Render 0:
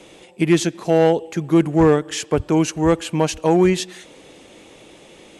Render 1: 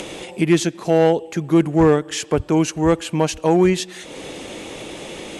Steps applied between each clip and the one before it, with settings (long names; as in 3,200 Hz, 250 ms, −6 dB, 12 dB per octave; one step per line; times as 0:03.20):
upward compression, threshold −21 dBFS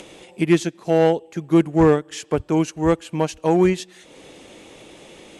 expander for the loud parts 1.5 to 1, over −32 dBFS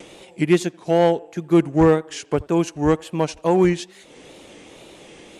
downward expander −47 dBFS
tape wow and flutter 110 cents
feedback echo with a band-pass in the loop 83 ms, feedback 46%, band-pass 790 Hz, level −22.5 dB